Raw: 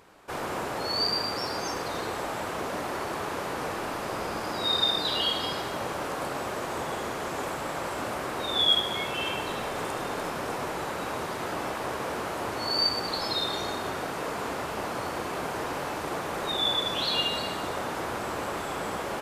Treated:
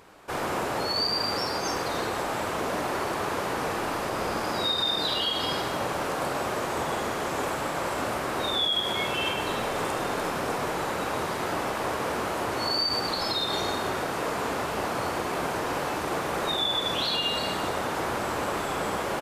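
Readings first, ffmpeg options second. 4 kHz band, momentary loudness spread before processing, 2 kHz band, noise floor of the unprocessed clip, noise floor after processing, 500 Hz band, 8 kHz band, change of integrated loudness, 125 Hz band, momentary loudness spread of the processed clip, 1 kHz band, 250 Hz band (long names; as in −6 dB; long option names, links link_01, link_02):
0.0 dB, 8 LU, +2.5 dB, −34 dBFS, −31 dBFS, +3.0 dB, +3.0 dB, +1.5 dB, +3.0 dB, 5 LU, +3.0 dB, +3.0 dB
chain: -filter_complex "[0:a]alimiter=limit=-21dB:level=0:latency=1:release=79,asplit=2[link_01][link_02];[link_02]adelay=49,volume=-12dB[link_03];[link_01][link_03]amix=inputs=2:normalize=0,volume=3dB"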